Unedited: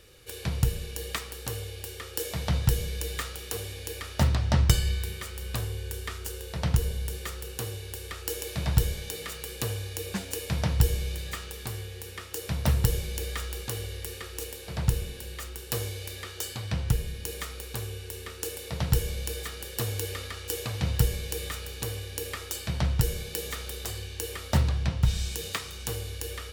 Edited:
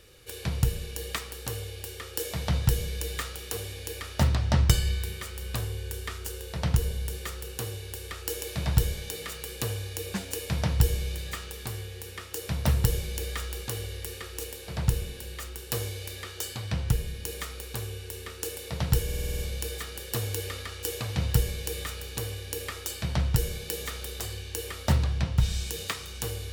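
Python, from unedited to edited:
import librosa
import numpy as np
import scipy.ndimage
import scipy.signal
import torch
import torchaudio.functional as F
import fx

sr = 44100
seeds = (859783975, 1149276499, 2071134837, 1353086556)

y = fx.edit(x, sr, fx.stutter(start_s=19.04, slice_s=0.05, count=8), tone=tone)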